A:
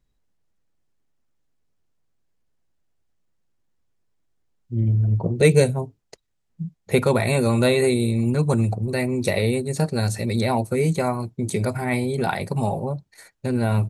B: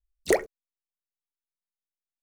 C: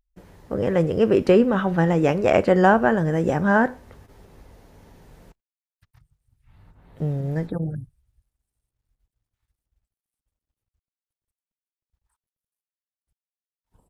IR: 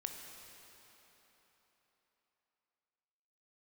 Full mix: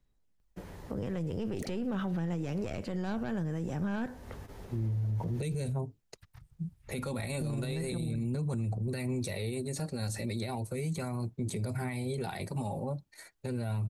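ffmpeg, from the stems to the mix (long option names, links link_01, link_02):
-filter_complex "[0:a]aphaser=in_gain=1:out_gain=1:delay=3.7:decay=0.31:speed=0.35:type=sinusoidal,volume=-5dB[link_01];[1:a]adelay=1300,volume=-15.5dB[link_02];[2:a]aeval=exprs='0.794*(cos(1*acos(clip(val(0)/0.794,-1,1)))-cos(1*PI/2))+0.0447*(cos(6*acos(clip(val(0)/0.794,-1,1)))-cos(6*PI/2))':channel_layout=same,adelay=400,volume=2.5dB[link_03];[link_01][link_03]amix=inputs=2:normalize=0,acompressor=threshold=-25dB:ratio=2,volume=0dB[link_04];[link_02][link_04]amix=inputs=2:normalize=0,acrossover=split=230|3000[link_05][link_06][link_07];[link_06]acompressor=threshold=-33dB:ratio=6[link_08];[link_05][link_08][link_07]amix=inputs=3:normalize=0,alimiter=level_in=3dB:limit=-24dB:level=0:latency=1:release=27,volume=-3dB"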